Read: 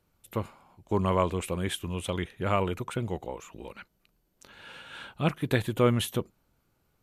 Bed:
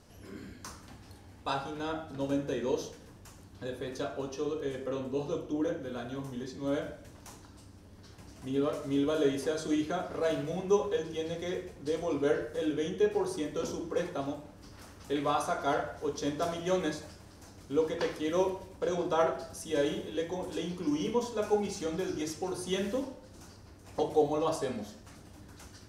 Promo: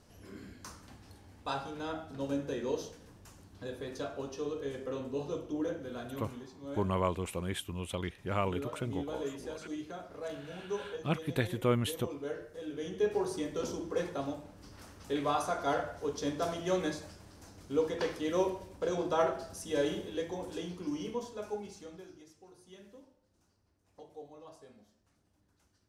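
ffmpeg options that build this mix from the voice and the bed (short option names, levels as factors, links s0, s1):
-filter_complex "[0:a]adelay=5850,volume=0.531[s0];[1:a]volume=2,afade=t=out:st=6.17:d=0.32:silence=0.421697,afade=t=in:st=12.66:d=0.49:silence=0.354813,afade=t=out:st=19.93:d=2.32:silence=0.0944061[s1];[s0][s1]amix=inputs=2:normalize=0"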